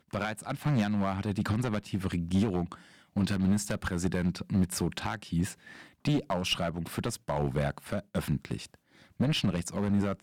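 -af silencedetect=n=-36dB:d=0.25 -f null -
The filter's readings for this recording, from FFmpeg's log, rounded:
silence_start: 2.74
silence_end: 3.16 | silence_duration: 0.42
silence_start: 5.52
silence_end: 6.05 | silence_duration: 0.53
silence_start: 8.65
silence_end: 9.20 | silence_duration: 0.54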